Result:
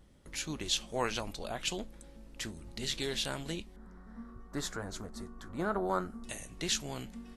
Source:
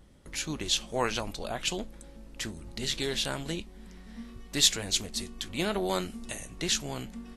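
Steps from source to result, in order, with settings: 3.76–6.24 resonant high shelf 1900 Hz -12 dB, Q 3; gain -4 dB

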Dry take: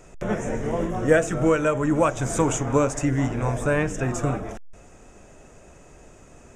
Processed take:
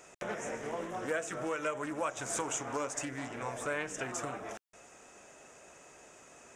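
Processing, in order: compressor 3:1, threshold -28 dBFS, peak gain reduction 12 dB; HPF 910 Hz 6 dB/oct; Doppler distortion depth 0.19 ms

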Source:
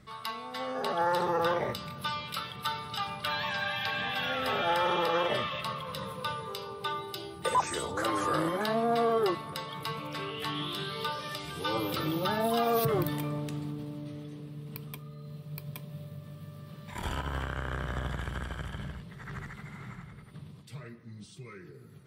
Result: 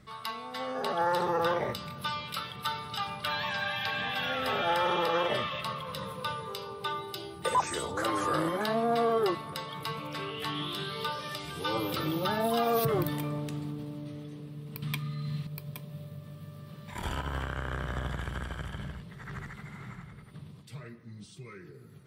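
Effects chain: 14.82–15.47 ten-band EQ 125 Hz +10 dB, 250 Hz +6 dB, 500 Hz -5 dB, 1000 Hz +5 dB, 2000 Hz +12 dB, 4000 Hz +10 dB, 8000 Hz +6 dB

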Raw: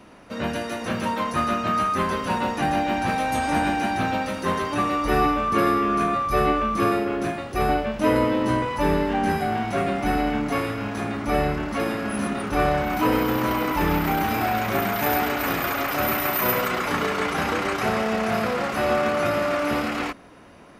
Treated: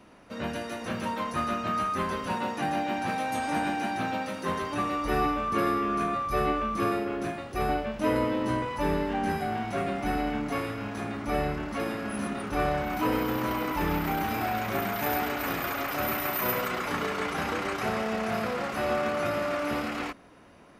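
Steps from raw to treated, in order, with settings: 2.34–4.49 HPF 120 Hz 12 dB/oct; gain -6 dB

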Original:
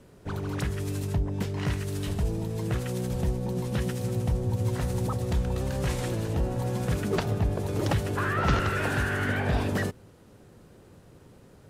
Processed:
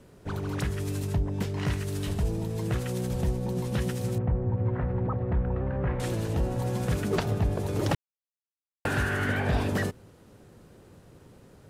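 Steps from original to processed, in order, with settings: 4.18–6 LPF 1900 Hz 24 dB/oct; 7.95–8.85 mute

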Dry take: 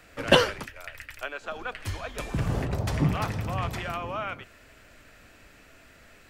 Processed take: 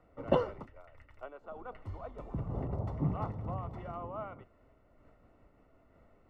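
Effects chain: polynomial smoothing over 65 samples; noise-modulated level, depth 60%; gain -4 dB

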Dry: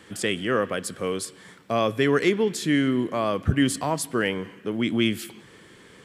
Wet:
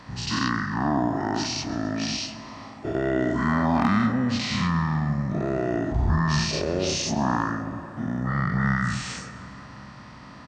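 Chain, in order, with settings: spectral dilation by 0.12 s; low shelf 150 Hz -3.5 dB; in parallel at +1.5 dB: compressor 6:1, threshold -31 dBFS, peak gain reduction 17 dB; on the sum: hard clip -5 dBFS, distortion -37 dB; on a send: feedback echo 77 ms, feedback 52%, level -17.5 dB; on the sum: spring tank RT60 2.9 s, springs 34/55 ms, chirp 40 ms, DRR 11.5 dB; speed mistake 78 rpm record played at 45 rpm; gain -6.5 dB

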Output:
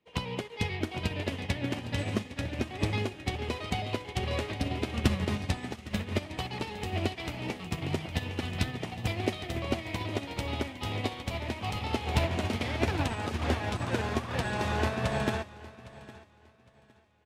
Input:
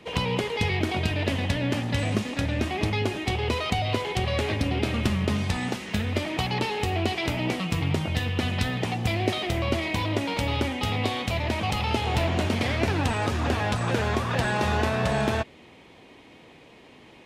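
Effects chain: on a send: feedback echo 0.81 s, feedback 56%, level -8 dB; on the sum: upward expander 2.5:1, over -38 dBFS

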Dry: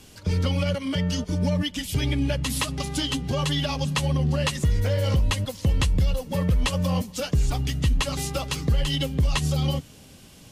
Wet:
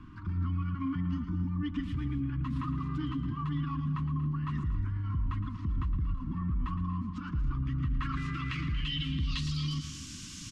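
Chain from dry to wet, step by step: low-pass sweep 1000 Hz -> 6600 Hz, 7.57–9.97; limiter -29.5 dBFS, peak gain reduction 19 dB; elliptic band-stop 320–1100 Hz, stop band 40 dB; tapped delay 0.113/0.234/0.272 s -11/-15/-16 dB; gain +3.5 dB

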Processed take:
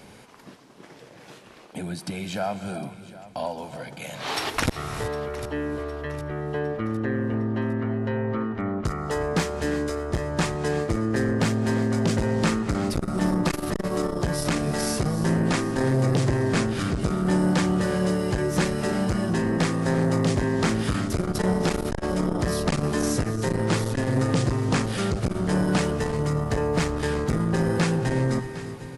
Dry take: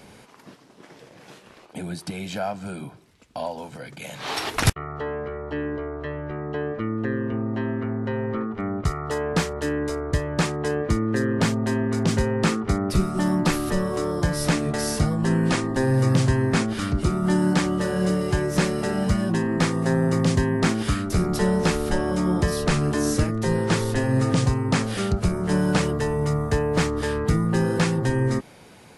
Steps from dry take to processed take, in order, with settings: feedback echo 0.758 s, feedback 46%, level -17.5 dB; on a send at -11.5 dB: reverb, pre-delay 3 ms; on the sum: core saturation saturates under 390 Hz

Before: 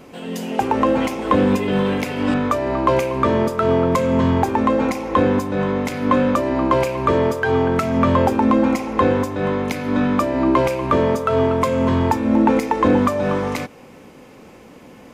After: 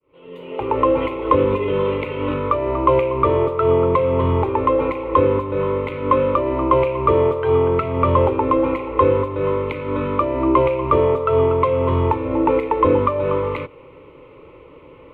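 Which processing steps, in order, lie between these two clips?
opening faded in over 0.78 s; air absorption 410 m; fixed phaser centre 1100 Hz, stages 8; gain +4.5 dB

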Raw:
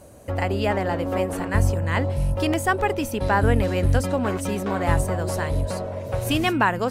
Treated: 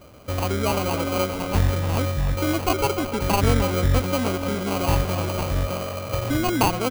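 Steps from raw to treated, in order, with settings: elliptic band-stop 1800–5000 Hz; sample-rate reducer 1800 Hz, jitter 0%; speakerphone echo 0.3 s, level -9 dB

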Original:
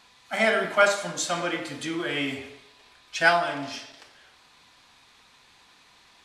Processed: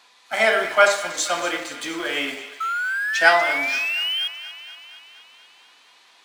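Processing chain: HPF 390 Hz 12 dB/oct; painted sound rise, 2.6–4.28, 1300–3300 Hz -29 dBFS; in parallel at -9 dB: sample gate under -32.5 dBFS; on the sum: thin delay 0.238 s, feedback 64%, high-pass 1400 Hz, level -13.5 dB; gain +2 dB

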